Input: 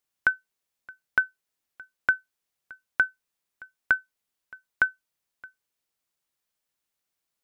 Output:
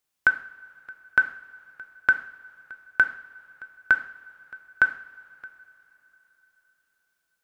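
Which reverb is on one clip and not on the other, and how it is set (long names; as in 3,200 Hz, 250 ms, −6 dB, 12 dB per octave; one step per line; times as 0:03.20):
coupled-rooms reverb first 0.54 s, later 4.1 s, from −20 dB, DRR 7 dB
level +2.5 dB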